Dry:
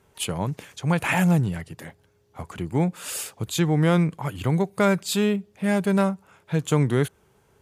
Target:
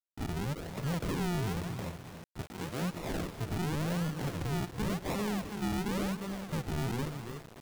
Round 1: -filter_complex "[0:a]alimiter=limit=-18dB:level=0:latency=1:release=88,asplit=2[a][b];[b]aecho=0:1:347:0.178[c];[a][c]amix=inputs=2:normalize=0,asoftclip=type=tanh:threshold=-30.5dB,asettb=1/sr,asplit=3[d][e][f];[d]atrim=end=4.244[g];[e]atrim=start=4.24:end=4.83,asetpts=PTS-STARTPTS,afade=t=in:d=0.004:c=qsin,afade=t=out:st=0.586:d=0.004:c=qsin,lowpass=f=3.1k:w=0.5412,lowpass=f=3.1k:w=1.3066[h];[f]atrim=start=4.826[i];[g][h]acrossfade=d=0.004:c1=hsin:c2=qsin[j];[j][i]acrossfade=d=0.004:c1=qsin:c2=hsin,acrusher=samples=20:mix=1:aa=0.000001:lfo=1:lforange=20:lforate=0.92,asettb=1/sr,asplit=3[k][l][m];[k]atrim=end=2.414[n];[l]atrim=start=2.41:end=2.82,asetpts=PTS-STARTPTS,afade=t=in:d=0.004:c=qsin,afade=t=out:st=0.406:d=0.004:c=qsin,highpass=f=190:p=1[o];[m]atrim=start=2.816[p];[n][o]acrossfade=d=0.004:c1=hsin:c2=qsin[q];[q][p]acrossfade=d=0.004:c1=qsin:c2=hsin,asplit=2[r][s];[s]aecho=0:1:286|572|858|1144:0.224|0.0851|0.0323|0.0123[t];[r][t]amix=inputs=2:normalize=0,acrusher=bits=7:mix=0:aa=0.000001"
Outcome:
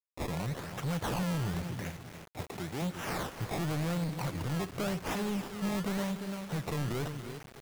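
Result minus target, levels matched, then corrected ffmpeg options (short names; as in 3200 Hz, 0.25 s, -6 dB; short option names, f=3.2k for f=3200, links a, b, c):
decimation with a swept rate: distortion -7 dB
-filter_complex "[0:a]alimiter=limit=-18dB:level=0:latency=1:release=88,asplit=2[a][b];[b]aecho=0:1:347:0.178[c];[a][c]amix=inputs=2:normalize=0,asoftclip=type=tanh:threshold=-30.5dB,asettb=1/sr,asplit=3[d][e][f];[d]atrim=end=4.244[g];[e]atrim=start=4.24:end=4.83,asetpts=PTS-STARTPTS,afade=t=in:d=0.004:c=qsin,afade=t=out:st=0.586:d=0.004:c=qsin,lowpass=f=3.1k:w=0.5412,lowpass=f=3.1k:w=1.3066[h];[f]atrim=start=4.826[i];[g][h]acrossfade=d=0.004:c1=hsin:c2=qsin[j];[j][i]acrossfade=d=0.004:c1=qsin:c2=hsin,acrusher=samples=56:mix=1:aa=0.000001:lfo=1:lforange=56:lforate=0.92,asettb=1/sr,asplit=3[k][l][m];[k]atrim=end=2.414[n];[l]atrim=start=2.41:end=2.82,asetpts=PTS-STARTPTS,afade=t=in:d=0.004:c=qsin,afade=t=out:st=0.406:d=0.004:c=qsin,highpass=f=190:p=1[o];[m]atrim=start=2.816[p];[n][o]acrossfade=d=0.004:c1=hsin:c2=qsin[q];[q][p]acrossfade=d=0.004:c1=qsin:c2=hsin,asplit=2[r][s];[s]aecho=0:1:286|572|858|1144:0.224|0.0851|0.0323|0.0123[t];[r][t]amix=inputs=2:normalize=0,acrusher=bits=7:mix=0:aa=0.000001"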